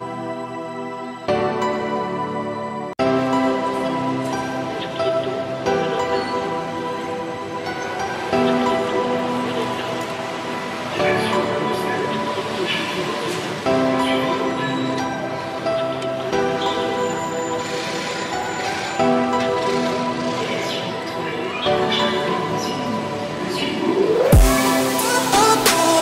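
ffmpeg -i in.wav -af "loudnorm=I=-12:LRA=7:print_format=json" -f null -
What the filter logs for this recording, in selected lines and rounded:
"input_i" : "-20.3",
"input_tp" : "-4.0",
"input_lra" : "6.0",
"input_thresh" : "-30.3",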